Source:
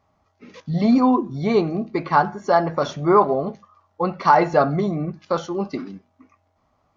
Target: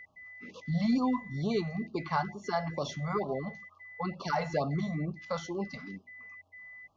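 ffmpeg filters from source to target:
-filter_complex "[0:a]acrossover=split=160|3000[a][b][c];[b]acompressor=threshold=-38dB:ratio=1.5[d];[a][d][c]amix=inputs=3:normalize=0,aeval=exprs='val(0)+0.00891*sin(2*PI*2000*n/s)':c=same,afftfilt=real='re*(1-between(b*sr/1024,300*pow(1900/300,0.5+0.5*sin(2*PI*2.2*pts/sr))/1.41,300*pow(1900/300,0.5+0.5*sin(2*PI*2.2*pts/sr))*1.41))':imag='im*(1-between(b*sr/1024,300*pow(1900/300,0.5+0.5*sin(2*PI*2.2*pts/sr))/1.41,300*pow(1900/300,0.5+0.5*sin(2*PI*2.2*pts/sr))*1.41))':win_size=1024:overlap=0.75,volume=-5dB"

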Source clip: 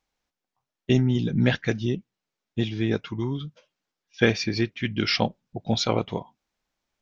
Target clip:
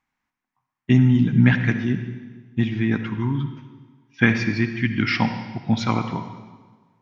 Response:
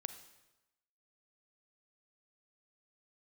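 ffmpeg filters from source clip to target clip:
-filter_complex "[0:a]equalizer=f=125:t=o:w=1:g=9,equalizer=f=250:t=o:w=1:g=11,equalizer=f=500:t=o:w=1:g=-9,equalizer=f=1k:t=o:w=1:g=11,equalizer=f=2k:t=o:w=1:g=11,equalizer=f=4k:t=o:w=1:g=-4[a];[1:a]atrim=start_sample=2205,asetrate=30870,aresample=44100[b];[a][b]afir=irnorm=-1:irlink=0,volume=-4dB"

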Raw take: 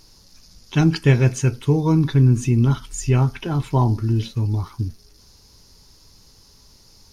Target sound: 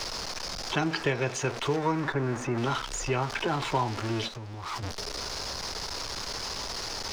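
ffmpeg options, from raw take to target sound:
-filter_complex "[0:a]aeval=exprs='val(0)+0.5*0.0447*sgn(val(0))':c=same,asplit=3[a][b][c];[a]afade=t=out:st=4.27:d=0.02[d];[b]acompressor=threshold=-30dB:ratio=16,afade=t=in:st=4.27:d=0.02,afade=t=out:st=4.82:d=0.02[e];[c]afade=t=in:st=4.82:d=0.02[f];[d][e][f]amix=inputs=3:normalize=0,acrossover=split=420 6900:gain=0.2 1 0.0891[g][h][i];[g][h][i]amix=inputs=3:normalize=0,acrossover=split=320|1400[j][k][l];[j]acompressor=threshold=-39dB:ratio=4[m];[k]acompressor=threshold=-34dB:ratio=4[n];[l]acompressor=threshold=-40dB:ratio=4[o];[m][n][o]amix=inputs=3:normalize=0,asettb=1/sr,asplit=3[p][q][r];[p]atrim=end=1.764[s];[q]atrim=start=1.76:end=2.58,asetpts=PTS-STARTPTS,afade=t=in:d=0.004:c=qsin,afade=t=out:st=0.816:d=0.004:c=qsin,highshelf=f=2.3k:t=q:w=1.5:g=-7[t];[r]atrim=start=2.576[u];[s][t]acrossfade=d=0.004:c1=hsin:c2=qsin[v];[v][u]acrossfade=d=0.004:c1=qsin:c2=hsin,volume=5.5dB"

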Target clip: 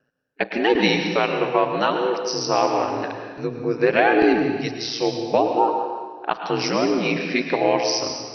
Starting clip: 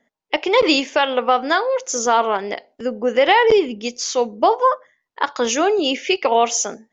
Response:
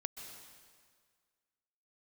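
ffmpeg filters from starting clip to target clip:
-filter_complex "[0:a]aeval=exprs='val(0)*sin(2*PI*70*n/s)':c=same,asetrate=36603,aresample=44100[a];[1:a]atrim=start_sample=2205,asetrate=52920,aresample=44100[b];[a][b]afir=irnorm=-1:irlink=0,volume=3.5dB"

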